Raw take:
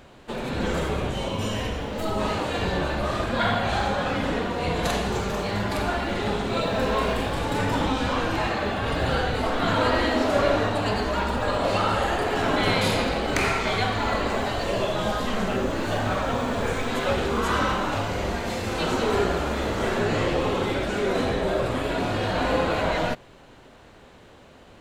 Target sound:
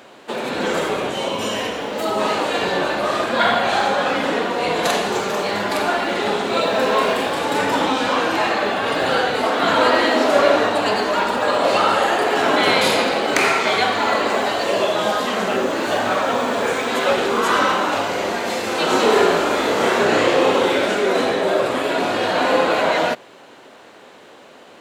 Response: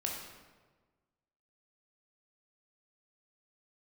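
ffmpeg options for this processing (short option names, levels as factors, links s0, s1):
-filter_complex "[0:a]highpass=300,asettb=1/sr,asplit=3[s0][s1][s2];[s0]atrim=end=18.874[s3];[s1]atrim=start=18.87:end=20.95,asetpts=PTS-STARTPTS,afade=t=in:d=0.004:c=qsin,afade=t=out:st=2.076:d=0.004:c=qsin,aecho=1:1:30|64.5|104.2|149.8|202.3:0.631|0.398|0.251|0.158|0.1,atrim=end_sample=91728[s4];[s2]atrim=start=20.946[s5];[s3][s4]acrossfade=d=0.004:c1=hsin:c2=qsin[s6];[s6][s5]acrossfade=d=0.004:c1=qsin:c2=hsin,volume=2.37"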